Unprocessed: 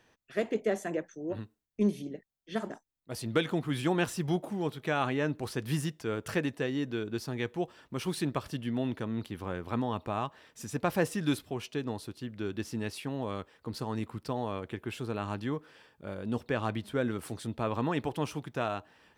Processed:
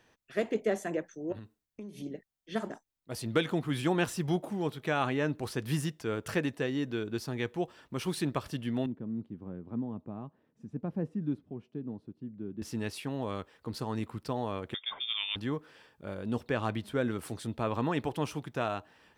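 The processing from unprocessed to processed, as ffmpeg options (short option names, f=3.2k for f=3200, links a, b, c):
-filter_complex "[0:a]asettb=1/sr,asplit=3[a][b][c];[a]atrim=end=1.324[d];[b]atrim=start=1.32:end=2.02,asetpts=PTS-STARTPTS,afade=t=in:d=0.004:c=qsin,afade=t=out:st=0.696:d=0.004:c=qsin,acompressor=threshold=-39dB:ratio=16:attack=3.2:release=140:knee=1:detection=peak[e];[c]atrim=start=2.016[f];[d][e]acrossfade=d=0.004:c1=hsin:c2=qsin[g];[g][f]acrossfade=d=0.004:c1=qsin:c2=hsin,asettb=1/sr,asplit=3[h][i][j];[h]atrim=end=8.864[k];[i]atrim=start=8.86:end=12.62,asetpts=PTS-STARTPTS,afade=t=in:d=0.004:c=qsin,afade=t=out:st=3.756:d=0.004:c=qsin,bandpass=f=200:t=q:w=1.5[l];[j]atrim=start=12.616[m];[k][l]acrossfade=d=0.004:c1=hsin:c2=qsin[n];[n][m]acrossfade=d=0.004:c1=qsin:c2=hsin,asettb=1/sr,asplit=3[o][p][q];[o]atrim=end=14.744[r];[p]atrim=start=14.74:end=15.36,asetpts=PTS-STARTPTS,afade=t=in:d=0.004:c=qsin,afade=t=out:st=0.616:d=0.004:c=qsin,lowpass=f=3.1k:t=q:w=0.5098,lowpass=f=3.1k:t=q:w=0.6013,lowpass=f=3.1k:t=q:w=0.9,lowpass=f=3.1k:t=q:w=2.563,afreqshift=-3700[s];[q]atrim=start=15.356[t];[r][s]acrossfade=d=0.004:c1=hsin:c2=qsin[u];[u][t]acrossfade=d=0.004:c1=qsin:c2=hsin"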